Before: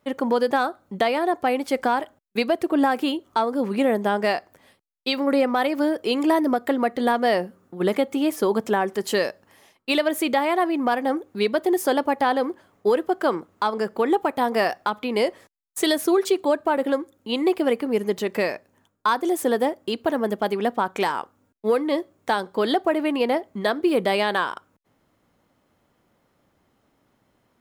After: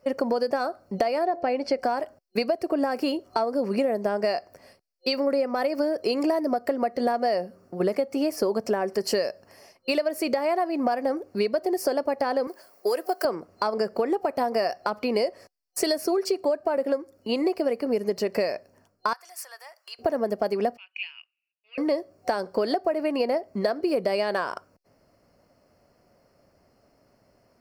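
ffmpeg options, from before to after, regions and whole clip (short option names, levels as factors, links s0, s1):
-filter_complex "[0:a]asettb=1/sr,asplit=3[s0][s1][s2];[s0]atrim=end=1.254[s3];[s1]atrim=start=1.25:end=1.79,asetpts=PTS-STARTPTS,afade=t=in:d=0.004:c=qsin,afade=t=out:st=0.536:d=0.004:c=qsin,lowpass=4400,bandreject=f=1200:w=8.3,bandreject=f=114.8:t=h:w=4,bandreject=f=229.6:t=h:w=4,bandreject=f=344.4:t=h:w=4,bandreject=f=459.2:t=h:w=4,bandreject=f=574:t=h:w=4,bandreject=f=688.8:t=h:w=4[s4];[s2]atrim=start=1.786[s5];[s3][s4]acrossfade=d=0.004:c1=hsin:c2=qsin[s6];[s6][s5]acrossfade=d=0.004:c1=qsin:c2=hsin,asettb=1/sr,asplit=3[s7][s8][s9];[s7]atrim=end=12.474[s10];[s8]atrim=start=12.47:end=13.25,asetpts=PTS-STARTPTS,afade=t=in:d=0.004:c=qsin,afade=t=out:st=0.776:d=0.004:c=qsin,highpass=f=380:p=1,aemphasis=mode=production:type=bsi[s11];[s9]atrim=start=13.246[s12];[s10][s11]acrossfade=d=0.004:c1=hsin:c2=qsin[s13];[s13][s12]acrossfade=d=0.004:c1=qsin:c2=hsin,asettb=1/sr,asplit=3[s14][s15][s16];[s14]atrim=end=19.134[s17];[s15]atrim=start=19.13:end=19.99,asetpts=PTS-STARTPTS,afade=t=in:d=0.004:c=qsin,afade=t=out:st=0.856:d=0.004:c=qsin,acompressor=threshold=0.0224:ratio=3:attack=3.2:release=140:knee=1:detection=peak,highpass=f=1100:w=0.5412,highpass=f=1100:w=1.3066[s18];[s16]atrim=start=19.986[s19];[s17][s18]acrossfade=d=0.004:c1=hsin:c2=qsin[s20];[s20][s19]acrossfade=d=0.004:c1=qsin:c2=hsin,asettb=1/sr,asplit=3[s21][s22][s23];[s21]atrim=end=20.774[s24];[s22]atrim=start=20.77:end=21.78,asetpts=PTS-STARTPTS,afade=t=in:d=0.004:c=qsin,afade=t=out:st=1.006:d=0.004:c=qsin,acontrast=81,asuperpass=centerf=2700:order=4:qfactor=6[s25];[s23]atrim=start=21.776[s26];[s24][s25]acrossfade=d=0.004:c1=hsin:c2=qsin[s27];[s27][s26]acrossfade=d=0.004:c1=qsin:c2=hsin,superequalizer=7b=1.58:8b=2.51:13b=0.316:14b=2.82,acompressor=threshold=0.0794:ratio=6,lowshelf=f=140:g=4.5"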